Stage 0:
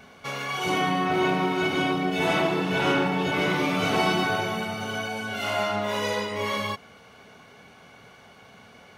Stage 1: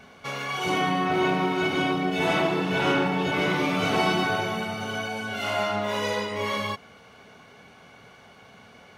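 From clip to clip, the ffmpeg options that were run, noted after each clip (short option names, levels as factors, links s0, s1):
-af "highshelf=f=9300:g=-4"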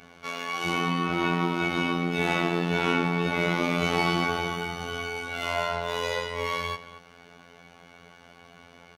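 -filter_complex "[0:a]asplit=2[s0][s1];[s1]adelay=227.4,volume=0.178,highshelf=f=4000:g=-5.12[s2];[s0][s2]amix=inputs=2:normalize=0,afftfilt=real='hypot(re,im)*cos(PI*b)':imag='0':win_size=2048:overlap=0.75,volume=1.26"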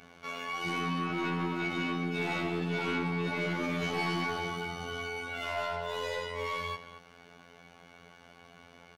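-af "asoftclip=type=tanh:threshold=0.106,volume=0.668"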